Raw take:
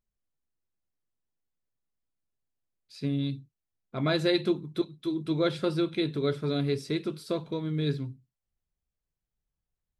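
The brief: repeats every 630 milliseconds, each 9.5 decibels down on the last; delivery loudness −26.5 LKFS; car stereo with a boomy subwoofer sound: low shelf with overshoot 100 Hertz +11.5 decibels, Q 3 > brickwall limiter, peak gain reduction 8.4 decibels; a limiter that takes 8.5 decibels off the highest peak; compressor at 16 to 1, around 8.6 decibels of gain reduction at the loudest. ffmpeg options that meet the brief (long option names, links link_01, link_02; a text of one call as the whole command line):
ffmpeg -i in.wav -af "acompressor=threshold=-29dB:ratio=16,alimiter=level_in=3.5dB:limit=-24dB:level=0:latency=1,volume=-3.5dB,lowshelf=frequency=100:width_type=q:width=3:gain=11.5,aecho=1:1:630|1260|1890|2520:0.335|0.111|0.0365|0.012,volume=17dB,alimiter=limit=-17dB:level=0:latency=1" out.wav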